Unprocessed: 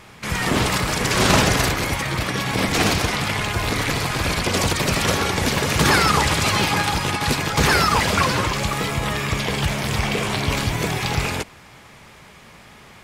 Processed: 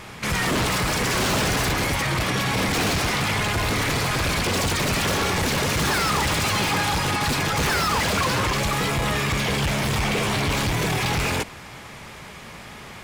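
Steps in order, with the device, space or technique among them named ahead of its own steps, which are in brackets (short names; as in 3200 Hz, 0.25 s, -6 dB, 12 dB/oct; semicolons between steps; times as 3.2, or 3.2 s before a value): saturation between pre-emphasis and de-emphasis (high shelf 5200 Hz +7 dB; soft clip -24.5 dBFS, distortion -6 dB; high shelf 5200 Hz -7 dB); gain +5.5 dB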